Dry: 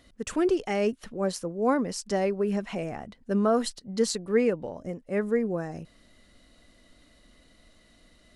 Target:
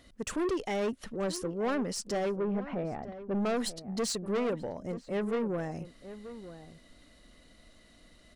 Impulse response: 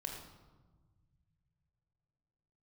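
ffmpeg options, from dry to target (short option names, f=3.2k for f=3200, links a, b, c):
-filter_complex "[0:a]asettb=1/sr,asplit=3[a][b][c];[a]atrim=end=2.354[d];[b]atrim=start=2.35:end=3.35,asetpts=PTS-STARTPTS,afade=t=in:d=0.004:c=qsin,afade=t=out:st=0.996:d=0.004:c=qsin,lowpass=1.5k[e];[c]atrim=start=3.346[f];[d][e]acrossfade=d=0.004:c1=hsin:c2=qsin[g];[g][f]acrossfade=d=0.004:c1=qsin:c2=hsin,asoftclip=type=tanh:threshold=-27dB,asplit=2[h][i];[i]adelay=932.9,volume=-13dB,highshelf=f=4k:g=-21[j];[h][j]amix=inputs=2:normalize=0"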